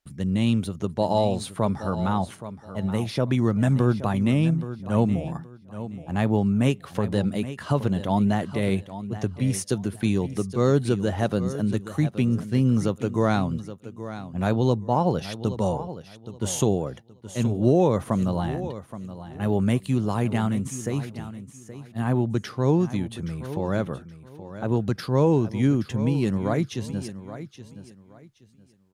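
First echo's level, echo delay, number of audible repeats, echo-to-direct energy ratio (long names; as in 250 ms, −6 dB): −13.0 dB, 823 ms, 2, −12.5 dB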